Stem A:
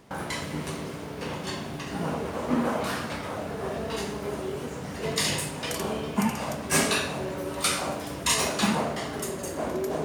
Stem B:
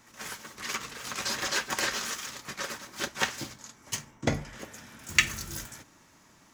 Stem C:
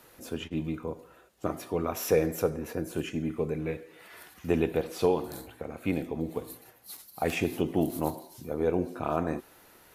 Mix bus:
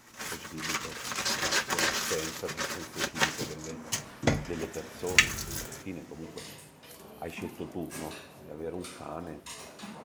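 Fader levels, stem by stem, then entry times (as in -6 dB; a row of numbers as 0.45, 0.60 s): -19.5, +1.5, -10.5 dB; 1.20, 0.00, 0.00 s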